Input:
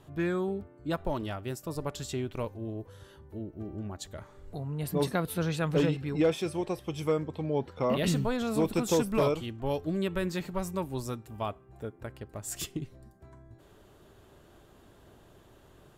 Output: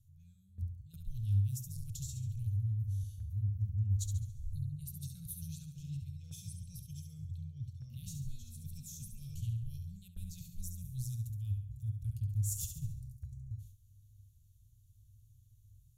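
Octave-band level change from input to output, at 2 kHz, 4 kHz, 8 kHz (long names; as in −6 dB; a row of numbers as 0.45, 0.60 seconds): below −30 dB, −16.0 dB, −3.5 dB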